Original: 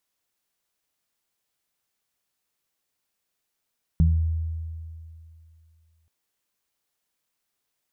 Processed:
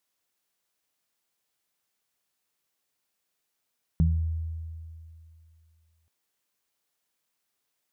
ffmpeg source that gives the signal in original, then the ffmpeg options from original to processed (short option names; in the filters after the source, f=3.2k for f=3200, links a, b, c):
-f lavfi -i "aevalsrc='0.178*pow(10,-3*t/2.53)*sin(2*PI*81.1*t)+0.158*pow(10,-3*t/0.43)*sin(2*PI*162.2*t)':d=2.08:s=44100"
-af "lowshelf=f=83:g=-8"